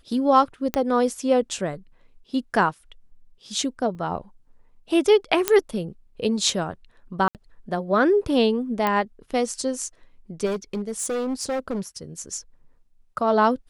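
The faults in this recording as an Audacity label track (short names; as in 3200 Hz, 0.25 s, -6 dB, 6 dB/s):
0.740000	0.740000	pop -8 dBFS
3.950000	3.950000	gap 2.1 ms
5.480000	5.480000	pop -2 dBFS
7.280000	7.350000	gap 68 ms
8.870000	8.870000	pop -10 dBFS
10.450000	11.810000	clipped -23 dBFS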